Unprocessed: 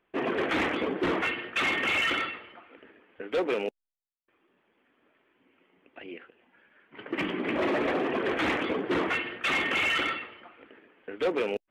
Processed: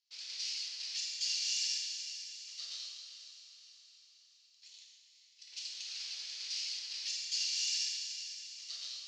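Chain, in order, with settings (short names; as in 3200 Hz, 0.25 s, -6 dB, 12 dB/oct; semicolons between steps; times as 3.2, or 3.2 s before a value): minimum comb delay 0.52 ms; in parallel at +1 dB: compressor, threshold -31 dBFS, peak gain reduction 7 dB; on the sum: varispeed +29%; Butterworth band-pass 5200 Hz, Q 2.4; on a send: diffused feedback echo 0.466 s, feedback 53%, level -10 dB; on the sum: non-linear reverb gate 0.45 s falling, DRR -2.5 dB; gain -3.5 dB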